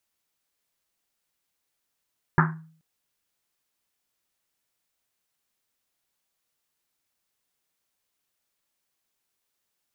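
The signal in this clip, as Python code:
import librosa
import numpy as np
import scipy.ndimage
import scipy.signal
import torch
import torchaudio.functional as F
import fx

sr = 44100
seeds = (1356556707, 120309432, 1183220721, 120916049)

y = fx.risset_drum(sr, seeds[0], length_s=0.43, hz=160.0, decay_s=0.53, noise_hz=1300.0, noise_width_hz=850.0, noise_pct=40)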